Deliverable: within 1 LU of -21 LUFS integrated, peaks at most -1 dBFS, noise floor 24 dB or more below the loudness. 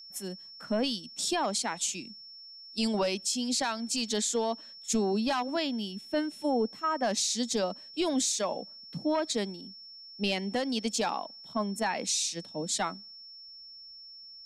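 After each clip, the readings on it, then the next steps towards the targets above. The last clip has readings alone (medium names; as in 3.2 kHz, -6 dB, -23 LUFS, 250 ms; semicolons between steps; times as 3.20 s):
steady tone 5.4 kHz; tone level -46 dBFS; loudness -30.5 LUFS; peak level -20.0 dBFS; loudness target -21.0 LUFS
-> band-stop 5.4 kHz, Q 30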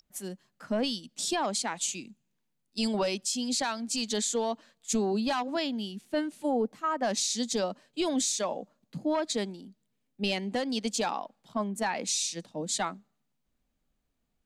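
steady tone not found; loudness -31.0 LUFS; peak level -20.0 dBFS; loudness target -21.0 LUFS
-> trim +10 dB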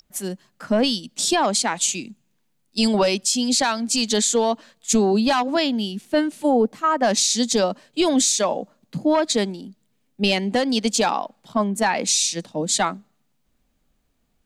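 loudness -21.0 LUFS; peak level -10.0 dBFS; noise floor -68 dBFS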